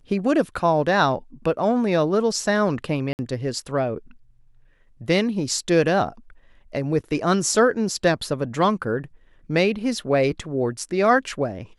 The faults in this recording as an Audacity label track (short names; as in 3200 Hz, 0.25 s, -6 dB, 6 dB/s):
3.130000	3.190000	gap 59 ms